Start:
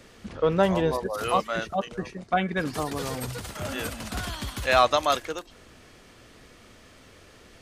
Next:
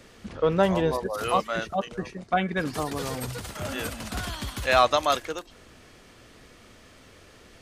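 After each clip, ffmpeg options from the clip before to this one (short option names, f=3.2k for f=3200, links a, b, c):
-af anull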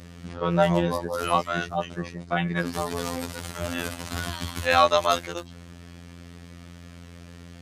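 -af "aeval=exprs='val(0)+0.00891*(sin(2*PI*60*n/s)+sin(2*PI*2*60*n/s)/2+sin(2*PI*3*60*n/s)/3+sin(2*PI*4*60*n/s)/4+sin(2*PI*5*60*n/s)/5)':c=same,afftfilt=real='hypot(re,im)*cos(PI*b)':imag='0':win_size=2048:overlap=0.75,highpass=62,volume=4.5dB"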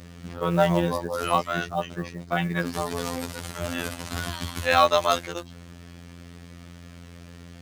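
-af "acrusher=bits=7:mode=log:mix=0:aa=0.000001"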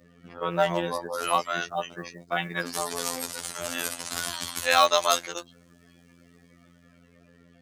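-filter_complex "[0:a]highpass=f=550:p=1,afftdn=nr=18:nf=-48,acrossover=split=5200[a][b];[b]dynaudnorm=f=250:g=11:m=10dB[c];[a][c]amix=inputs=2:normalize=0"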